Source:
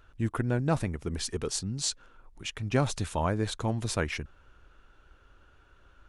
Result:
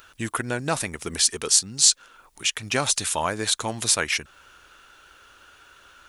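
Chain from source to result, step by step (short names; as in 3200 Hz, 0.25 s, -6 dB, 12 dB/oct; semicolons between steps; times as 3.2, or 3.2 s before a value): tilt +4 dB/oct; in parallel at +1.5 dB: compressor, threshold -37 dBFS, peak gain reduction 19 dB; on the sum: gain +3 dB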